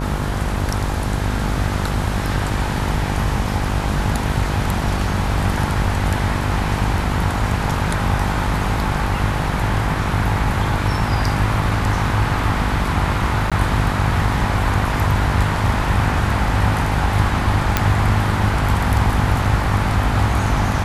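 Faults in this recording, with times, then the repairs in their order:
buzz 50 Hz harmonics 22 -23 dBFS
13.5–13.52 gap 16 ms
17.77 pop 0 dBFS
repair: de-click; de-hum 50 Hz, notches 22; interpolate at 13.5, 16 ms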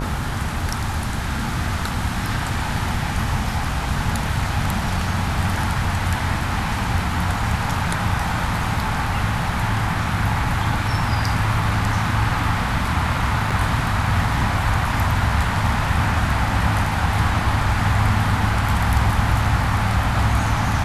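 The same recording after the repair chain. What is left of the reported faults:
none

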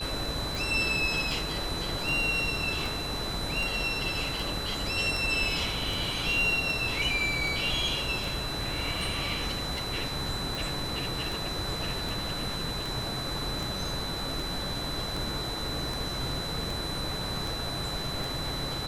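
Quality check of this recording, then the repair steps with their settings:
tick 78 rpm
tone 4000 Hz -35 dBFS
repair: de-click; notch 4000 Hz, Q 30

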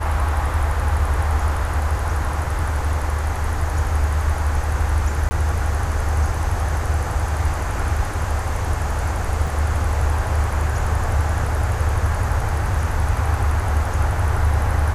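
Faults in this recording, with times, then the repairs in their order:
5.29–5.31 gap 20 ms
9.47 gap 3 ms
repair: interpolate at 5.29, 20 ms; interpolate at 9.47, 3 ms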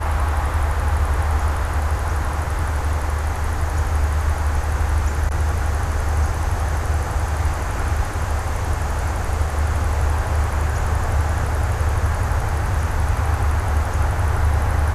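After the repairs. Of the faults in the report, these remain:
none

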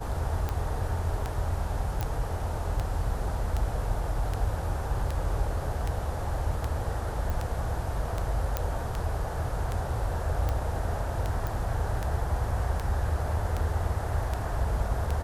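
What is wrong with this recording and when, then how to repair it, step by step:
tick 78 rpm -17 dBFS
2.01 pop
7.3 pop
8.57 pop -12 dBFS
11.47 pop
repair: de-click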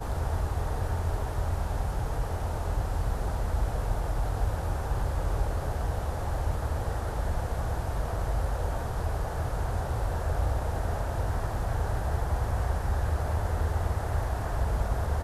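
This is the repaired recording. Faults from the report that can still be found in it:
none

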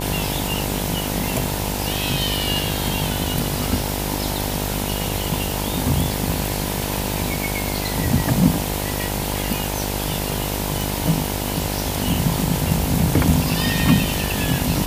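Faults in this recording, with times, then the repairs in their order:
buzz 50 Hz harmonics 20 -26 dBFS
10.81 pop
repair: de-click; de-hum 50 Hz, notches 20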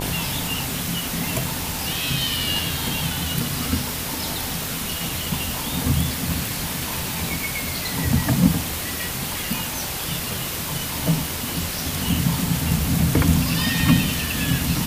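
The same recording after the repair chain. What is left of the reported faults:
none

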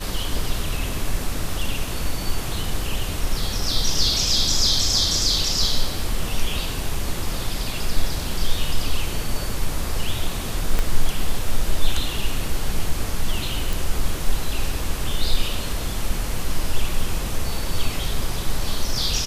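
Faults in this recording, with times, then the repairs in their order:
10.79 pop -8 dBFS
13.73 pop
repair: de-click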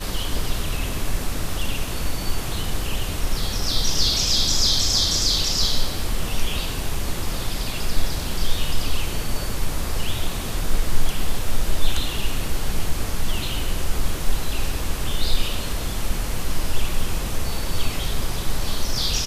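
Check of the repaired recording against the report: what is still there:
10.79 pop

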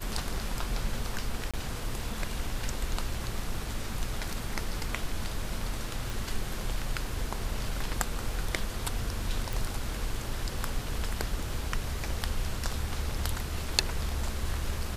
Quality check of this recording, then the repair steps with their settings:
1.51–1.54 gap 26 ms
6.1 pop
9.53 pop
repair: de-click; interpolate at 1.51, 26 ms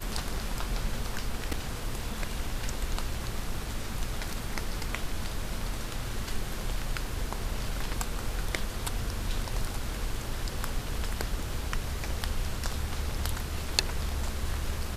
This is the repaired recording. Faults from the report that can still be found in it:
none

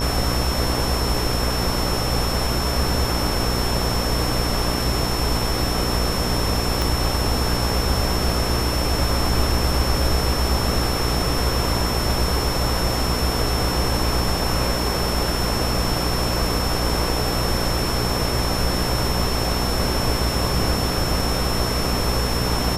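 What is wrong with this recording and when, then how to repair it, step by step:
buzz 60 Hz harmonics 21 -25 dBFS
tone 5400 Hz -28 dBFS
6.82 pop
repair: de-click; notch 5400 Hz, Q 30; de-hum 60 Hz, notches 21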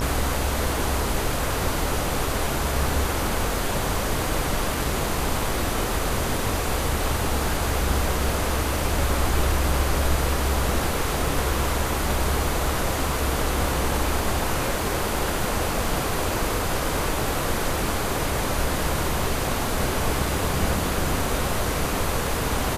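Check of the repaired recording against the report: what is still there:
6.82 pop

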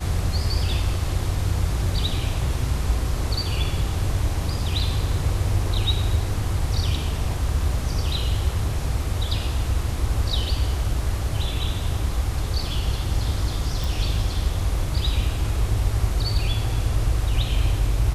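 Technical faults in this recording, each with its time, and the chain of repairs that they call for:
13.84 pop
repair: de-click

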